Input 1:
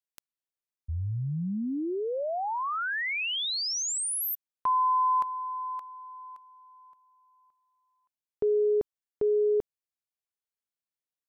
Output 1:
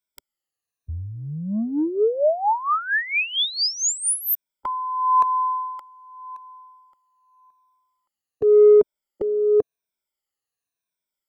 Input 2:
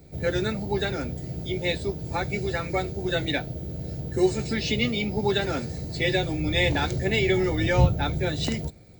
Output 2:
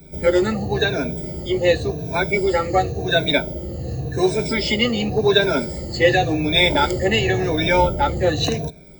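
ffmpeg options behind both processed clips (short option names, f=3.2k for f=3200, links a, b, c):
-filter_complex "[0:a]afftfilt=real='re*pow(10,16/40*sin(2*PI*(1.6*log(max(b,1)*sr/1024/100)/log(2)-(-0.91)*(pts-256)/sr)))':imag='im*pow(10,16/40*sin(2*PI*(1.6*log(max(b,1)*sr/1024/100)/log(2)-(-0.91)*(pts-256)/sr)))':win_size=1024:overlap=0.75,adynamicequalizer=threshold=0.02:dfrequency=530:dqfactor=0.91:tfrequency=530:tqfactor=0.91:attack=5:release=100:ratio=0.438:range=2.5:mode=boostabove:tftype=bell,acrossover=split=340|1600|5900[a][b][c][d];[a]asoftclip=type=tanh:threshold=-24dB[e];[e][b][c][d]amix=inputs=4:normalize=0,volume=3.5dB"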